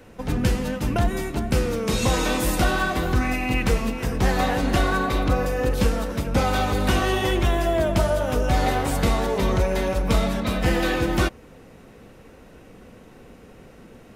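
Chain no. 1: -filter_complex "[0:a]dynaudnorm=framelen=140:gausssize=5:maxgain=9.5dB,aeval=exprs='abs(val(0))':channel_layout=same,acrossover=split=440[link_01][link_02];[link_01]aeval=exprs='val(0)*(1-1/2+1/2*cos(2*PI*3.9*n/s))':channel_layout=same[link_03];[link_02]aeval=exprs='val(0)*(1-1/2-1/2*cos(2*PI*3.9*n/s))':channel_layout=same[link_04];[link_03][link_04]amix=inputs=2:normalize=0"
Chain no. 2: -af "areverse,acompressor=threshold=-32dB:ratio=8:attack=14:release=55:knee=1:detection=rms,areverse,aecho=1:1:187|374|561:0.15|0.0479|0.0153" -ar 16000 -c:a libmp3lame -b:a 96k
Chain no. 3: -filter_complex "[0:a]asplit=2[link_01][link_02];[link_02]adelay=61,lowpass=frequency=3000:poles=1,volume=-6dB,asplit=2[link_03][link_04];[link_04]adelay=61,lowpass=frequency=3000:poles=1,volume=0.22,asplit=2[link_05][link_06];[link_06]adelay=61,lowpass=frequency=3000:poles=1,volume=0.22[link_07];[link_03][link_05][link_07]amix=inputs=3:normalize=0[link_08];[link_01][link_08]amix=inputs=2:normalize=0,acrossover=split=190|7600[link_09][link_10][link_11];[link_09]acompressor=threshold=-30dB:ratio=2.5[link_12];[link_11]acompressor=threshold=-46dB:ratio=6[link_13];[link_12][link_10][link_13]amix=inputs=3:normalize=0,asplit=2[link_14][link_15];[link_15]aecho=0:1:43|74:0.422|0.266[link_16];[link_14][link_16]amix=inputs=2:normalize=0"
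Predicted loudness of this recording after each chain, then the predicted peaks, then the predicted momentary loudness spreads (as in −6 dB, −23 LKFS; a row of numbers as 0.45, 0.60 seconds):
−24.0, −34.5, −23.0 LKFS; −4.5, −20.5, −8.0 dBFS; 4, 14, 4 LU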